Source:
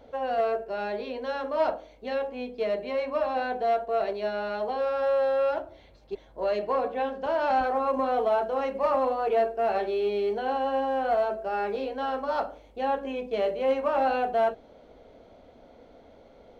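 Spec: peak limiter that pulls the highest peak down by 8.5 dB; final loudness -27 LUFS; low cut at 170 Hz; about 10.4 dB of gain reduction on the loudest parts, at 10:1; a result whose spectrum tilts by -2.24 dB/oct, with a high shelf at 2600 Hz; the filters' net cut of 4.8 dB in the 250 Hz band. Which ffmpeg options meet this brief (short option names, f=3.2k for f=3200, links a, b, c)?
-af "highpass=170,equalizer=f=250:t=o:g=-4.5,highshelf=f=2.6k:g=-8.5,acompressor=threshold=-32dB:ratio=10,volume=13.5dB,alimiter=limit=-19.5dB:level=0:latency=1"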